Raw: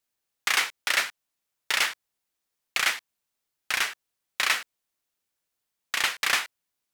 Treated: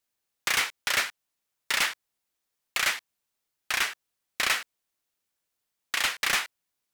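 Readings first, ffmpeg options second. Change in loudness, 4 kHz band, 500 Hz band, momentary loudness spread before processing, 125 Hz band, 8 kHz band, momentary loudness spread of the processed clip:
-1.0 dB, -1.0 dB, +0.5 dB, 9 LU, no reading, 0.0 dB, 8 LU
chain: -af "aeval=exprs='0.15*(abs(mod(val(0)/0.15+3,4)-2)-1)':c=same"

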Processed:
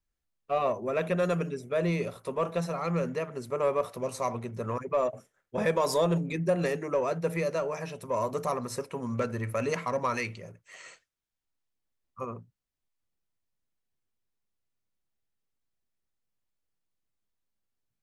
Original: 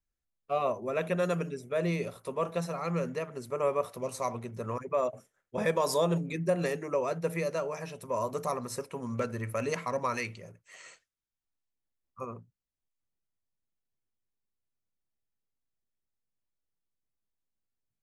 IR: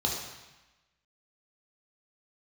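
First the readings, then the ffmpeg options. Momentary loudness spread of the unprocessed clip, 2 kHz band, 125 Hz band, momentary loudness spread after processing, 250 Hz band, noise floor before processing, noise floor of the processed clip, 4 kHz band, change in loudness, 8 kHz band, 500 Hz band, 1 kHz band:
11 LU, +1.5 dB, +2.5 dB, 10 LU, +2.5 dB, under -85 dBFS, -85 dBFS, +1.0 dB, +2.0 dB, 0.0 dB, +2.0 dB, +2.0 dB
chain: -filter_complex "[0:a]highshelf=f=7500:g=-5.5,asplit=2[s0][s1];[s1]asoftclip=type=tanh:threshold=0.0335,volume=0.447[s2];[s0][s2]amix=inputs=2:normalize=0"

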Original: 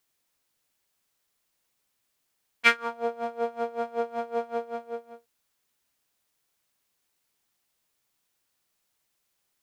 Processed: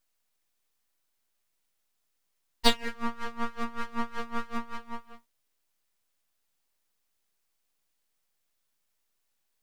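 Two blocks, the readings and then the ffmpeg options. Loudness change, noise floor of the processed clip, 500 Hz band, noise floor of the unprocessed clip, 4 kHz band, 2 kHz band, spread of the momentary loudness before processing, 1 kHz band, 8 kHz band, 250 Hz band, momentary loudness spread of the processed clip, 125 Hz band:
-3.5 dB, -77 dBFS, -9.0 dB, -77 dBFS, +5.0 dB, -8.5 dB, 14 LU, -3.0 dB, +4.5 dB, +5.5 dB, 15 LU, no reading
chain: -af "aeval=exprs='abs(val(0))':c=same"

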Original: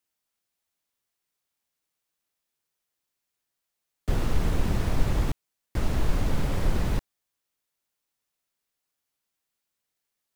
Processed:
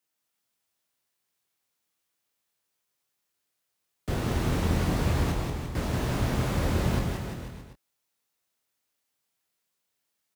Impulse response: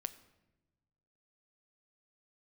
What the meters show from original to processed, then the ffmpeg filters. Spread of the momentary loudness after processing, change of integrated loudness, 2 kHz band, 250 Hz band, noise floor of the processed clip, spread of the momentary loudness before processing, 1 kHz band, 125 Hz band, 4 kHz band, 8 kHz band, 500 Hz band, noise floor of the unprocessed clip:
12 LU, +1.0 dB, +3.0 dB, +3.0 dB, -80 dBFS, 6 LU, +3.0 dB, +2.0 dB, +3.0 dB, +3.0 dB, +3.0 dB, -84 dBFS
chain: -filter_complex "[0:a]highpass=68,asplit=2[s0][s1];[s1]adelay=24,volume=0.501[s2];[s0][s2]amix=inputs=2:normalize=0,asplit=2[s3][s4];[s4]aecho=0:1:180|342|487.8|619|737.1:0.631|0.398|0.251|0.158|0.1[s5];[s3][s5]amix=inputs=2:normalize=0"

